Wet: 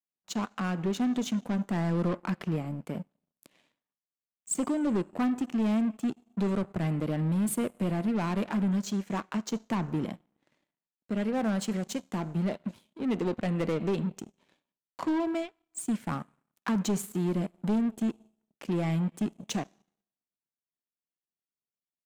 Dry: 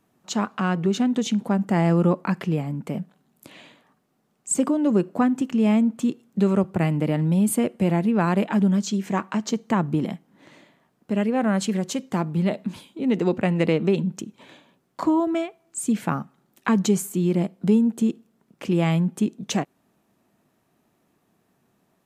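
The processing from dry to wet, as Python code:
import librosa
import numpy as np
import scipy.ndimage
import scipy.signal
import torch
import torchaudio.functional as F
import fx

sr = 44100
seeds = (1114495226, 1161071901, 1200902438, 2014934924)

y = fx.rev_schroeder(x, sr, rt60_s=1.2, comb_ms=25, drr_db=18.0)
y = 10.0 ** (-22.0 / 20.0) * np.tanh(y / 10.0 ** (-22.0 / 20.0))
y = fx.power_curve(y, sr, exponent=2.0)
y = y * 10.0 ** (-1.0 / 20.0)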